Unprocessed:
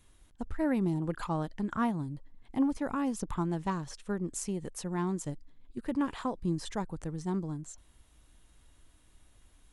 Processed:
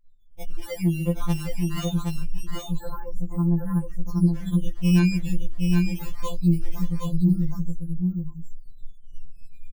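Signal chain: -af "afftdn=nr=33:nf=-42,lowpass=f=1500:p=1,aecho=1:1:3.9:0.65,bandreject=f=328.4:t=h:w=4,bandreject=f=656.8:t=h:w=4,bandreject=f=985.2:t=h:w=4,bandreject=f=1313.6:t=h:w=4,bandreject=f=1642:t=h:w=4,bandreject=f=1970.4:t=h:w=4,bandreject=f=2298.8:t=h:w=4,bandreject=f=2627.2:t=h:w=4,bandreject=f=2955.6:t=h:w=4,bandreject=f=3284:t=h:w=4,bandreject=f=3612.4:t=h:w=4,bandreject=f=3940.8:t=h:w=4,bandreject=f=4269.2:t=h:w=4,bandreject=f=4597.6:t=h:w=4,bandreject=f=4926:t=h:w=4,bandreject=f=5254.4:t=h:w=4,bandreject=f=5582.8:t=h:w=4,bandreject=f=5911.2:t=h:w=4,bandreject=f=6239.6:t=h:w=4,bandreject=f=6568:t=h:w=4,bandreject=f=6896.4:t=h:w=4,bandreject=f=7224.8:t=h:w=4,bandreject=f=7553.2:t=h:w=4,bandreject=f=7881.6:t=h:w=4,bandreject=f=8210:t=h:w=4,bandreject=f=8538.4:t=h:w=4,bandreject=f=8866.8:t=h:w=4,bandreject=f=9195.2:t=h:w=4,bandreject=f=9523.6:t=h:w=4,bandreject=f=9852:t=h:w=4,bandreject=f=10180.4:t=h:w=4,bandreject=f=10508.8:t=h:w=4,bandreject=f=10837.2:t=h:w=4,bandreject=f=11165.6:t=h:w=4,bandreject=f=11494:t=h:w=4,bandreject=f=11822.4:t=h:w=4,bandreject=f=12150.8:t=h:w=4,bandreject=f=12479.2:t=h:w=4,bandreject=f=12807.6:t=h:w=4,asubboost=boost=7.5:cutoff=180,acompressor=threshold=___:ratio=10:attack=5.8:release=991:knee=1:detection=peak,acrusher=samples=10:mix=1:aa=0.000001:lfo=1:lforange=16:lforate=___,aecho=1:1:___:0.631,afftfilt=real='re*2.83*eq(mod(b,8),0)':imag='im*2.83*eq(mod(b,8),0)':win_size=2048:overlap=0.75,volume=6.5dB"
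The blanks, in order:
-24dB, 0.23, 769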